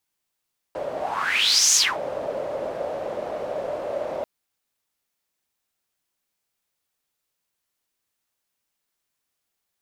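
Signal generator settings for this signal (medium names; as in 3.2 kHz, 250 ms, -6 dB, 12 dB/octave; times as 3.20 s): whoosh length 3.49 s, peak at 1.00 s, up 0.86 s, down 0.25 s, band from 580 Hz, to 6.5 kHz, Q 6.7, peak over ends 12.5 dB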